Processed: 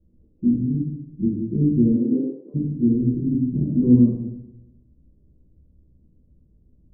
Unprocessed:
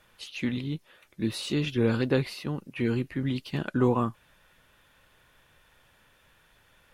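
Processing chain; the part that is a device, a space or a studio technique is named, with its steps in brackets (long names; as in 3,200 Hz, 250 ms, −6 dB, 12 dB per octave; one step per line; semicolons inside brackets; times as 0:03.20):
next room (low-pass filter 300 Hz 24 dB per octave; convolution reverb RT60 0.95 s, pre-delay 6 ms, DRR −6.5 dB)
0:01.96–0:02.54: high-pass filter 140 Hz → 500 Hz 24 dB per octave
level +3 dB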